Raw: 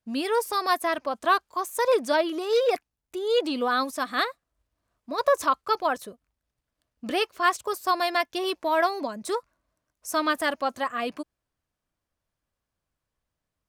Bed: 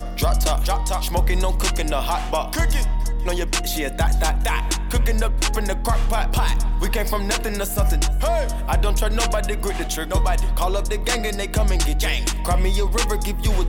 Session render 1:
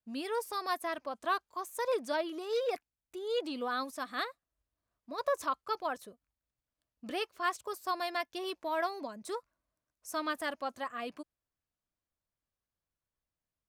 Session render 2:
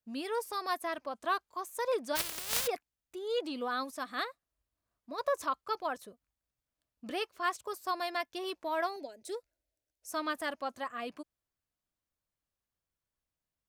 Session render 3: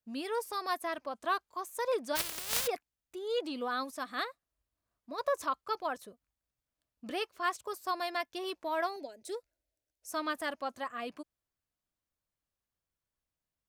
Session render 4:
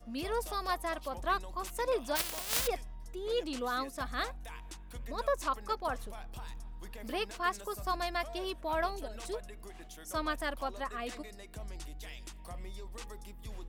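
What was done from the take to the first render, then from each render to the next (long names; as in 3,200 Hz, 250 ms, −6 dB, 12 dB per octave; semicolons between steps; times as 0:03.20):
level −10 dB
0:02.15–0:02.66: compressing power law on the bin magnitudes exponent 0.12; 0:08.96–0:10.11: phaser with its sweep stopped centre 460 Hz, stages 4
no processing that can be heard
mix in bed −25 dB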